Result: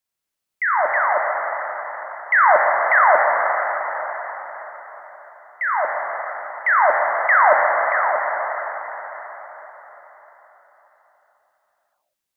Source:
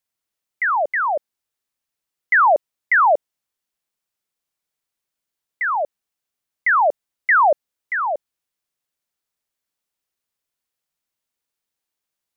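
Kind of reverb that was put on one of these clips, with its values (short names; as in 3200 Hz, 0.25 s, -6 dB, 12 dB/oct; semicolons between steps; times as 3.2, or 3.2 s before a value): plate-style reverb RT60 4.7 s, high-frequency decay 0.85×, DRR -1.5 dB; gain -1.5 dB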